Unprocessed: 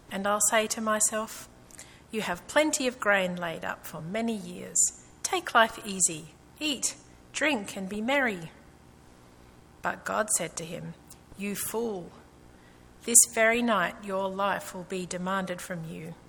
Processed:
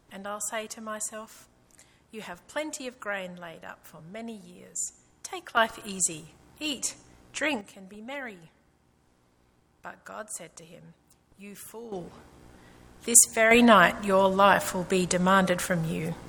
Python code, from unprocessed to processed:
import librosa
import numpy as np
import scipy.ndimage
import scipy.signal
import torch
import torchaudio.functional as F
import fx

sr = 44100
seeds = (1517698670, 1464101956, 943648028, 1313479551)

y = fx.gain(x, sr, db=fx.steps((0.0, -9.0), (5.57, -2.0), (7.61, -11.5), (11.92, 1.0), (13.51, 8.5)))